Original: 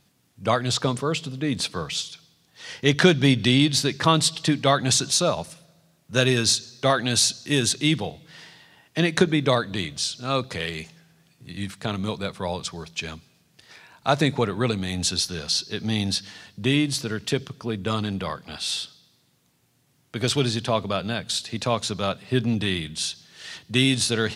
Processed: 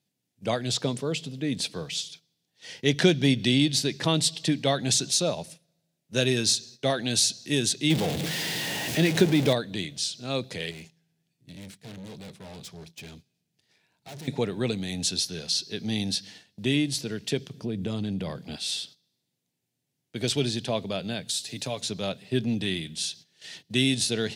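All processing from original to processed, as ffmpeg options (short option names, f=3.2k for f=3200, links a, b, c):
-filter_complex "[0:a]asettb=1/sr,asplit=3[a][b][c];[a]atrim=end=7.904[d];[b]atrim=start=7.9:end=9.53,asetpts=PTS-STARTPTS,afade=t=in:d=0.004:c=qsin,afade=t=out:st=1.626:d=0.004:c=qsin,aeval=exprs='val(0)+0.5*0.106*sgn(val(0))':c=same,highshelf=f=6.2k:g=-5.5[e];[c]atrim=start=9.526[f];[d][e]acrossfade=d=0.004:c1=hsin:c2=qsin[g];[g][f]acrossfade=d=0.004:c1=qsin:c2=hsin,asettb=1/sr,asplit=3[h][i][j];[h]atrim=end=10.714[k];[i]atrim=start=10.71:end=14.28,asetpts=PTS-STARTPTS,afade=t=in:d=0.004:c=qsin,afade=t=out:st=3.566:d=0.004:c=qsin,lowshelf=f=190:g=6,bandreject=f=540:w=12,aeval=exprs='(tanh(56.2*val(0)+0.55)-tanh(0.55))/56.2':c=same[l];[j]atrim=start=14.276[m];[k][l]acrossfade=d=0.004:c1=hsin:c2=qsin[n];[n][m]acrossfade=d=0.004:c1=qsin:c2=hsin,asettb=1/sr,asplit=3[o][p][q];[o]atrim=end=17.544[r];[p]atrim=start=17.54:end=18.56,asetpts=PTS-STARTPTS,afade=t=in:d=0.004:c=qsin,afade=t=out:st=1.016:d=0.004:c=qsin,lowshelf=f=410:g=9.5,acompressor=threshold=-23dB:ratio=3:attack=3.2:release=140:knee=1:detection=peak[s];[q]atrim=start=18.556[t];[r][s]acrossfade=d=0.004:c1=hsin:c2=qsin[u];[u][t]acrossfade=d=0.004:c1=qsin:c2=hsin,asettb=1/sr,asplit=3[v][w][x];[v]atrim=end=21.284[y];[w]atrim=start=21.28:end=21.81,asetpts=PTS-STARTPTS,afade=t=in:d=0.004:c=qsin,afade=t=out:st=0.526:d=0.004:c=qsin,highshelf=f=6.3k:g=11,aecho=1:1:7:0.48,atrim=end_sample=23373,acompressor=threshold=-31dB:ratio=1.5:attack=3.2:release=140:knee=1:detection=peak[z];[x]atrim=start=21.806[aa];[y][z]acrossfade=d=0.004:c1=hsin:c2=qsin[ab];[ab][aa]acrossfade=d=0.004:c1=qsin:c2=hsin,agate=range=-12dB:threshold=-42dB:ratio=16:detection=peak,highpass=120,equalizer=f=1.2k:t=o:w=0.82:g=-12,volume=-2.5dB"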